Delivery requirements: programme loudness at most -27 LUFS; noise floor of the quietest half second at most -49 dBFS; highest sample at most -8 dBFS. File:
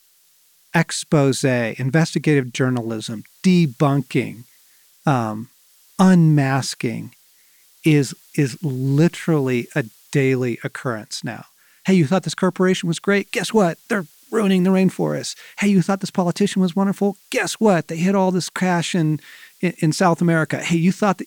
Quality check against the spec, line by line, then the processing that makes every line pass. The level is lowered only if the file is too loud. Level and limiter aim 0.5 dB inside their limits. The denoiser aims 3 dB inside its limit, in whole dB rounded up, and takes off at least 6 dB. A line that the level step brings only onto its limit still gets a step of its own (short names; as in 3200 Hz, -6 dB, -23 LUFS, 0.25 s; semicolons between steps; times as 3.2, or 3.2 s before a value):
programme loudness -19.5 LUFS: fail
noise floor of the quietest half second -57 dBFS: OK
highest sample -5.0 dBFS: fail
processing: gain -8 dB